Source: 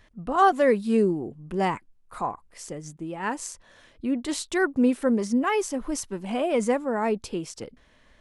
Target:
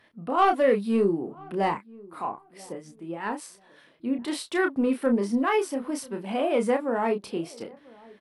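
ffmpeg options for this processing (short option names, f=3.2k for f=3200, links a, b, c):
-filter_complex "[0:a]highpass=190,equalizer=f=6.8k:w=2.4:g=-13.5,asoftclip=type=tanh:threshold=-13dB,asettb=1/sr,asplit=3[a][b][c];[a]atrim=end=1.744[d];[b]atrim=start=1.74:end=4.19,asetpts=PTS-STARTPTS,afade=t=in:d=0.004:c=qsin,afade=t=out:st=2.446:d=0.004:c=qsin,acrossover=split=1000[e][f];[e]aeval=exprs='val(0)*(1-0.5/2+0.5/2*cos(2*PI*5.1*n/s))':c=same[g];[f]aeval=exprs='val(0)*(1-0.5/2-0.5/2*cos(2*PI*5.1*n/s))':c=same[h];[g][h]amix=inputs=2:normalize=0[i];[c]atrim=start=4.186[j];[d][i]acrossfade=d=0.004:c1=hsin:c2=qsin[k];[k][j]acrossfade=d=0.004:c1=qsin:c2=hsin,asplit=2[l][m];[m]adelay=30,volume=-6dB[n];[l][n]amix=inputs=2:normalize=0,asplit=2[o][p];[p]adelay=988,lowpass=f=1k:p=1,volume=-23dB,asplit=2[q][r];[r]adelay=988,lowpass=f=1k:p=1,volume=0.27[s];[o][q][s]amix=inputs=3:normalize=0" -ar 32000 -c:a aac -b:a 96k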